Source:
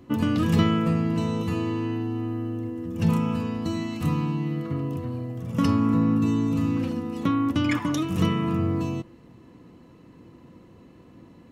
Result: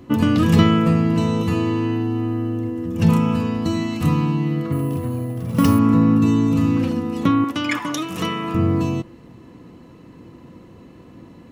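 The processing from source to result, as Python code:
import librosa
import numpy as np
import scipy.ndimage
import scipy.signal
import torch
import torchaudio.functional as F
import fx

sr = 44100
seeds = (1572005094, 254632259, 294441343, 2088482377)

y = fx.resample_bad(x, sr, factor=4, down='none', up='hold', at=(4.72, 5.79))
y = fx.highpass(y, sr, hz=610.0, slope=6, at=(7.44, 8.55))
y = y * 10.0 ** (6.5 / 20.0)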